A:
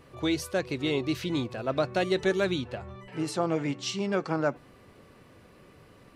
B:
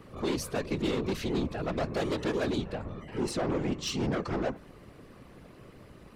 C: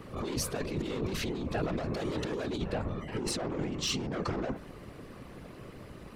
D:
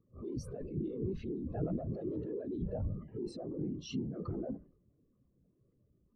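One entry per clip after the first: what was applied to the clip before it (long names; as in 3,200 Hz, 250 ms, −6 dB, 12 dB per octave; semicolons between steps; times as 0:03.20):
low-shelf EQ 470 Hz +5 dB; soft clipping −26 dBFS, distortion −9 dB; random phases in short frames
compressor whose output falls as the input rises −34 dBFS, ratio −1; level +1 dB
transient designer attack −2 dB, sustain +7 dB; every bin expanded away from the loudest bin 2.5 to 1; level −4.5 dB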